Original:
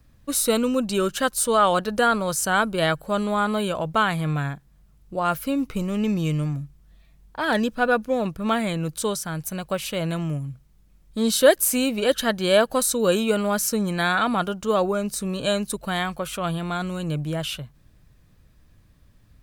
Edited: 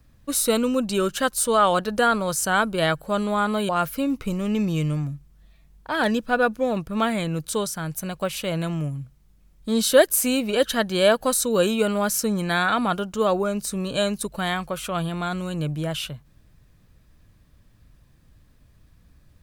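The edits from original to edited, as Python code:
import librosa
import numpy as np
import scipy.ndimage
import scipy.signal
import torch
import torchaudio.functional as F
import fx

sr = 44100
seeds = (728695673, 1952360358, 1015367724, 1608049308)

y = fx.edit(x, sr, fx.cut(start_s=3.69, length_s=1.49), tone=tone)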